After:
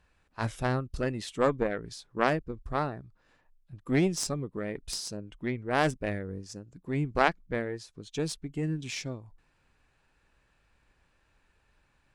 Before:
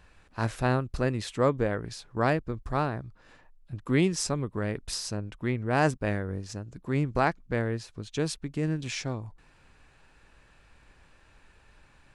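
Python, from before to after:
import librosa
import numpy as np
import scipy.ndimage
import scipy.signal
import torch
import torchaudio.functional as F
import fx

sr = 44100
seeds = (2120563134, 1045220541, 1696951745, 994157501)

y = fx.noise_reduce_blind(x, sr, reduce_db=8)
y = fx.cheby_harmonics(y, sr, harmonics=(2, 3, 7), levels_db=(-7, -26, -32), full_scale_db=-9.0)
y = y * 10.0 ** (1.5 / 20.0)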